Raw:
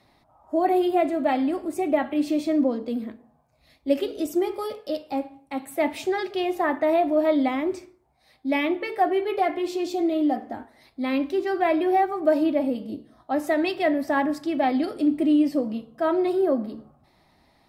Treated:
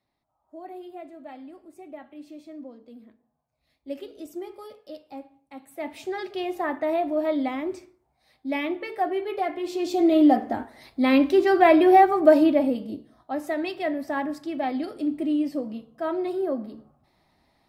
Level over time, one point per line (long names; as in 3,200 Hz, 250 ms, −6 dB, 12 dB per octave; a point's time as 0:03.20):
0:02.80 −19 dB
0:03.94 −12 dB
0:05.66 −12 dB
0:06.26 −4 dB
0:09.59 −4 dB
0:10.17 +6 dB
0:12.19 +6 dB
0:13.39 −5 dB